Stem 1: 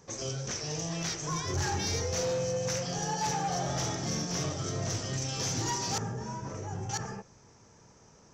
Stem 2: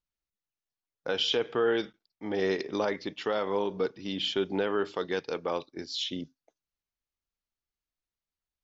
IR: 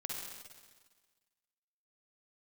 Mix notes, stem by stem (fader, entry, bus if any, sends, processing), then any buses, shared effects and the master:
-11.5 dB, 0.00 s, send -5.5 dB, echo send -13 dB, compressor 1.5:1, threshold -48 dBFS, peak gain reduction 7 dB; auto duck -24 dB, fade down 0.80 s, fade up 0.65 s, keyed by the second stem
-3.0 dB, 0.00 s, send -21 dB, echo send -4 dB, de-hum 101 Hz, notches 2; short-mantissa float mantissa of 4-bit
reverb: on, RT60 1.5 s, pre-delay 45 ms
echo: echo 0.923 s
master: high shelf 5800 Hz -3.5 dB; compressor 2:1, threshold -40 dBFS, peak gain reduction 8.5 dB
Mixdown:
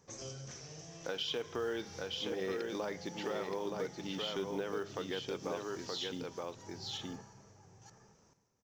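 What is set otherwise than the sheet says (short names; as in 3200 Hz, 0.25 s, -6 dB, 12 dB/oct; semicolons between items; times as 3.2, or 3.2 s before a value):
stem 1: missing compressor 1.5:1, threshold -48 dBFS, peak gain reduction 7 dB; master: missing high shelf 5800 Hz -3.5 dB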